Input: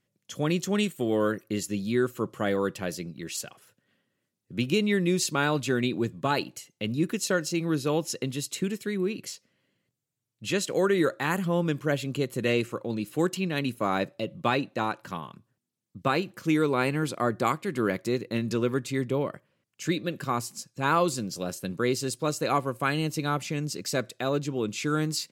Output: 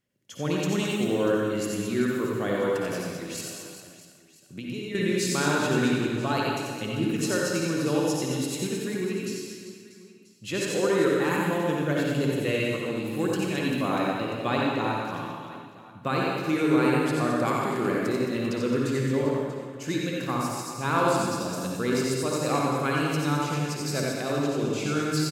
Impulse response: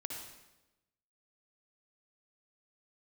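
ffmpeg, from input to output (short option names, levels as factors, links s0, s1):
-filter_complex "[0:a]aecho=1:1:90|216|392.4|639.4|985.1:0.631|0.398|0.251|0.158|0.1,asettb=1/sr,asplit=3[s0][s1][s2];[s0]atrim=end=3.404[s3];[s1]atrim=start=3.4:end=4.95,asetpts=PTS-STARTPTS,afade=t=in:d=0.004:c=qsin,afade=t=out:st=1.546:d=0.004:c=qsin,acompressor=threshold=0.02:ratio=3[s4];[s2]atrim=start=4.946[s5];[s3][s4]acrossfade=d=0.004:c1=hsin:c2=qsin[s6];[s6][s5]acrossfade=d=0.004:c1=qsin:c2=hsin[s7];[1:a]atrim=start_sample=2205[s8];[s7][s8]afir=irnorm=-1:irlink=0"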